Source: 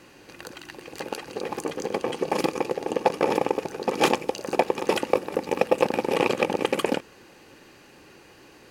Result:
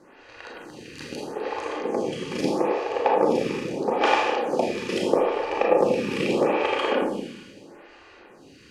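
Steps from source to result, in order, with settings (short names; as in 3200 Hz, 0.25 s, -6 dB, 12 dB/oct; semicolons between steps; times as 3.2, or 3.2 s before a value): air absorption 60 m; Schroeder reverb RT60 1.5 s, combs from 26 ms, DRR -4 dB; photocell phaser 0.78 Hz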